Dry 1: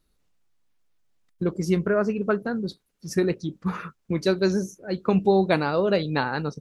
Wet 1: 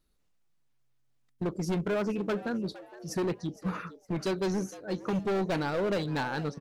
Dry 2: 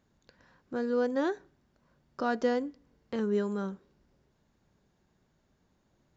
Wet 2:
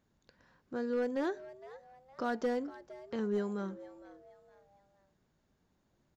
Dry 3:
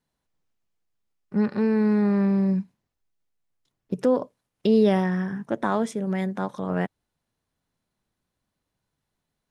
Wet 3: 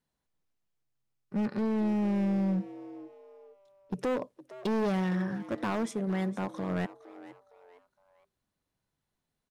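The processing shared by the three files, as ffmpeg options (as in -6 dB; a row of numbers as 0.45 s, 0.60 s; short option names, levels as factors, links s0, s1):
-filter_complex "[0:a]asoftclip=type=hard:threshold=0.0794,asplit=2[s0][s1];[s1]asplit=3[s2][s3][s4];[s2]adelay=462,afreqshift=130,volume=0.141[s5];[s3]adelay=924,afreqshift=260,volume=0.0495[s6];[s4]adelay=1386,afreqshift=390,volume=0.0174[s7];[s5][s6][s7]amix=inputs=3:normalize=0[s8];[s0][s8]amix=inputs=2:normalize=0,volume=0.631"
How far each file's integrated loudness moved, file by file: -7.0 LU, -4.5 LU, -7.5 LU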